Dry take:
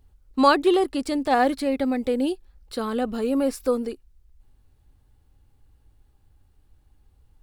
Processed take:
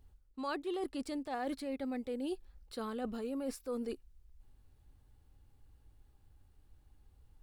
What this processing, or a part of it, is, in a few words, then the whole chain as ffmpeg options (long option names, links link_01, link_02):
compression on the reversed sound: -af "areverse,acompressor=threshold=-31dB:ratio=8,areverse,volume=-4.5dB"